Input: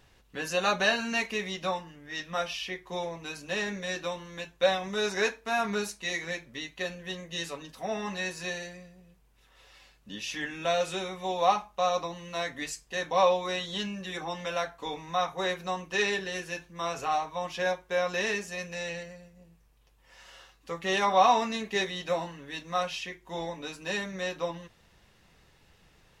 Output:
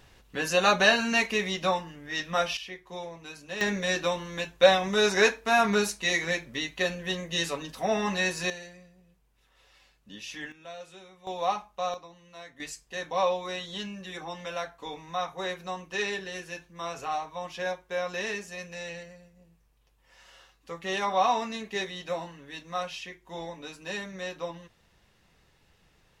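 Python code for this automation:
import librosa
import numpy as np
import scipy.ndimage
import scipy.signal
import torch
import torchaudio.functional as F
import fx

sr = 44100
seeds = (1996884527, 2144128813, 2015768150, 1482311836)

y = fx.gain(x, sr, db=fx.steps((0.0, 4.5), (2.57, -4.5), (3.61, 6.0), (8.5, -4.5), (10.52, -15.5), (11.27, -4.0), (11.94, -13.0), (12.6, -3.0)))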